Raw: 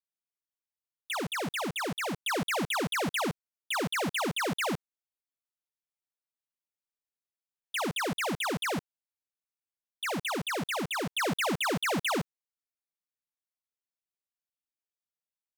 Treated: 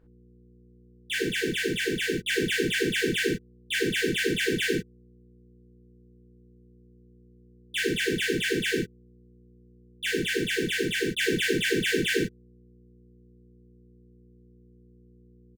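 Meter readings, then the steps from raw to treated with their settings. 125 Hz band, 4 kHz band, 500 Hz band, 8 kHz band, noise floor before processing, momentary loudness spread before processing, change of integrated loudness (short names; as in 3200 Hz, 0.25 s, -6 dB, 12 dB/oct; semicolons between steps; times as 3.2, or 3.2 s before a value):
+2.5 dB, +5.5 dB, +6.5 dB, +3.0 dB, under -85 dBFS, 6 LU, +4.5 dB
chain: high shelf 3500 Hz -6 dB; comb 2.6 ms, depth 37%; in parallel at +2 dB: limiter -36 dBFS, peak gain reduction 10.5 dB; on the sum: sample gate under -45.5 dBFS; buzz 60 Hz, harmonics 21, -58 dBFS -3 dB/oct; brick-wall FIR band-stop 500–1500 Hz; non-linear reverb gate 80 ms flat, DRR -7 dB; gain -4 dB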